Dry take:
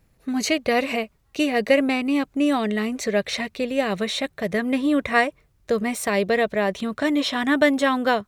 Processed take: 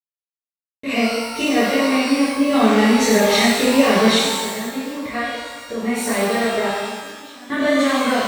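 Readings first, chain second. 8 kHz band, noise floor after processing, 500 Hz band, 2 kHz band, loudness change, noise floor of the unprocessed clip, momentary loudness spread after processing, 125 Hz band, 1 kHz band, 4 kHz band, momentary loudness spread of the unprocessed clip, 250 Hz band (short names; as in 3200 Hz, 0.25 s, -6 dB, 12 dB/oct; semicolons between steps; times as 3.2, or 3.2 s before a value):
+8.5 dB, under -85 dBFS, +3.0 dB, +2.5 dB, +4.5 dB, -63 dBFS, 13 LU, +6.0 dB, +4.5 dB, +7.0 dB, 7 LU, +4.0 dB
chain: compressor 2.5:1, threshold -24 dBFS, peak gain reduction 8 dB; random-step tremolo 1.2 Hz, depth 100%; shimmer reverb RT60 1.3 s, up +12 st, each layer -8 dB, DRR -11.5 dB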